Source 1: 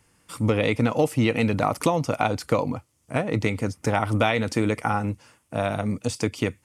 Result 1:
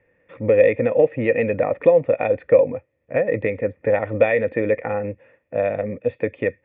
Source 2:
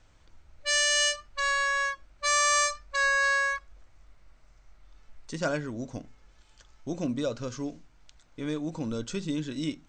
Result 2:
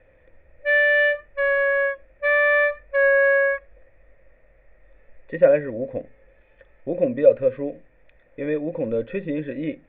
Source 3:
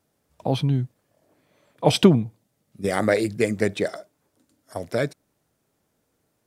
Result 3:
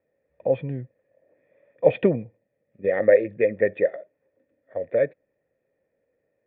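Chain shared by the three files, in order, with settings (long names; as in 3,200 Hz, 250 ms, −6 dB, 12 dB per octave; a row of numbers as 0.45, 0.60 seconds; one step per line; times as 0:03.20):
formant resonators in series e
normalise the peak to −3 dBFS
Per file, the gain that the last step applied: +14.5, +20.5, +10.0 decibels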